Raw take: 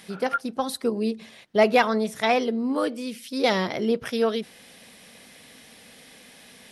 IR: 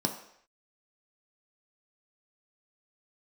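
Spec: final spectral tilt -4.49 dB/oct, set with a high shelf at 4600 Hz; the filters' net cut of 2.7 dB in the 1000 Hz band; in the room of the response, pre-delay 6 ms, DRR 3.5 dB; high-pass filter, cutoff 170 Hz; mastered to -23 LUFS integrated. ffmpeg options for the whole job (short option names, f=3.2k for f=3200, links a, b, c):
-filter_complex "[0:a]highpass=170,equalizer=f=1k:t=o:g=-4.5,highshelf=f=4.6k:g=9,asplit=2[a][b];[1:a]atrim=start_sample=2205,adelay=6[c];[b][c]afir=irnorm=-1:irlink=0,volume=-10dB[d];[a][d]amix=inputs=2:normalize=0,volume=-1dB"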